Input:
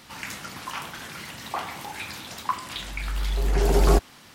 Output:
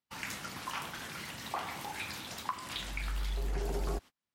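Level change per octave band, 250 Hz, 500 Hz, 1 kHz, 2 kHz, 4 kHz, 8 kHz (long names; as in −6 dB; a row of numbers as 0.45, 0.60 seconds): −12.5, −14.5, −9.0, −6.0, −6.0, −7.5 decibels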